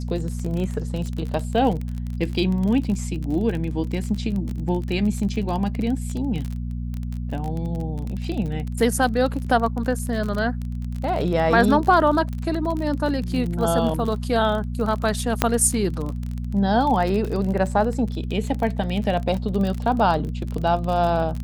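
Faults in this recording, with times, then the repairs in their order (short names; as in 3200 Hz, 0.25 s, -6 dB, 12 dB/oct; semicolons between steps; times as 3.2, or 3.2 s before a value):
crackle 33/s -26 dBFS
hum 60 Hz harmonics 4 -28 dBFS
15.42 pop -2 dBFS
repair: de-click; de-hum 60 Hz, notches 4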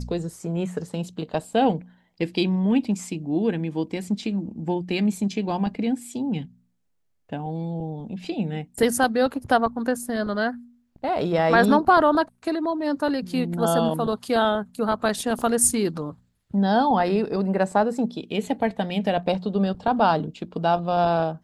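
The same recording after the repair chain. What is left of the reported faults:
15.42 pop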